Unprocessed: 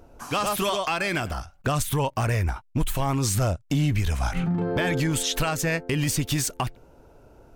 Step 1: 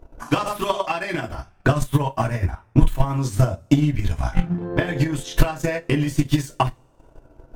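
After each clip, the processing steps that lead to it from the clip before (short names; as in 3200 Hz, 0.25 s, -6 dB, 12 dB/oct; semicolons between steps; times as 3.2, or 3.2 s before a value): high shelf 2700 Hz -8.5 dB; two-slope reverb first 0.21 s, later 1.6 s, from -28 dB, DRR -1 dB; transient shaper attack +11 dB, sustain -7 dB; gain -3 dB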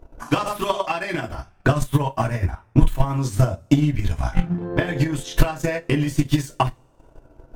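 nothing audible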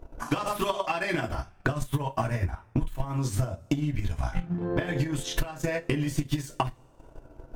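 compressor 10:1, threshold -23 dBFS, peak gain reduction 16.5 dB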